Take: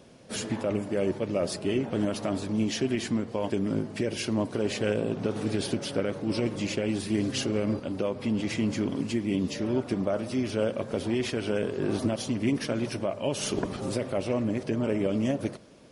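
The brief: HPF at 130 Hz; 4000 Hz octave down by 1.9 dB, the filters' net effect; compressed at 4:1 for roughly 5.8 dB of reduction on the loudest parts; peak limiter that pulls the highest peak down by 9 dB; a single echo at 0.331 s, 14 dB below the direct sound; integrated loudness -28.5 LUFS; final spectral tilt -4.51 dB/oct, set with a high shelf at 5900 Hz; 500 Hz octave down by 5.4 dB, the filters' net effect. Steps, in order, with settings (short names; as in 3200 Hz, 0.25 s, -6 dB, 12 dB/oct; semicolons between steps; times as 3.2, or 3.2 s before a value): HPF 130 Hz; bell 500 Hz -7 dB; bell 4000 Hz -4.5 dB; high shelf 5900 Hz +5 dB; compressor 4:1, threshold -32 dBFS; limiter -28.5 dBFS; echo 0.331 s -14 dB; gain +9.5 dB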